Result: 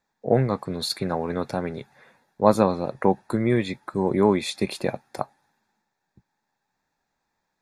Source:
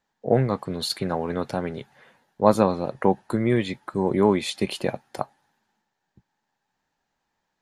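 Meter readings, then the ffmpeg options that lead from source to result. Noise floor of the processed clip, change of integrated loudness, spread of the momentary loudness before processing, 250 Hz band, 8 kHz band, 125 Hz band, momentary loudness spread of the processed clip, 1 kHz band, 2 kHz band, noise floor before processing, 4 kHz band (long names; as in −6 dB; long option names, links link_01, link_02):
−79 dBFS, 0.0 dB, 13 LU, 0.0 dB, 0.0 dB, 0.0 dB, 13 LU, 0.0 dB, 0.0 dB, −79 dBFS, −0.5 dB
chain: -af "asuperstop=centerf=3000:order=4:qfactor=6.1"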